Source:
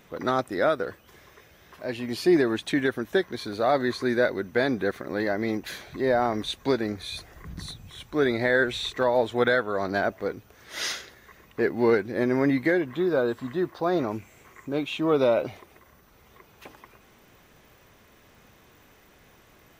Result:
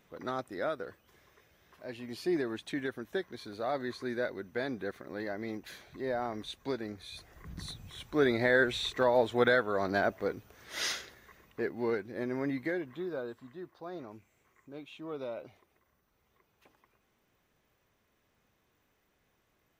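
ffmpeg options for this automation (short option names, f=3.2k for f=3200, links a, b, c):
-af "volume=-3.5dB,afade=t=in:st=7.12:d=0.67:silence=0.421697,afade=t=out:st=10.97:d=0.77:silence=0.421697,afade=t=out:st=12.8:d=0.71:silence=0.446684"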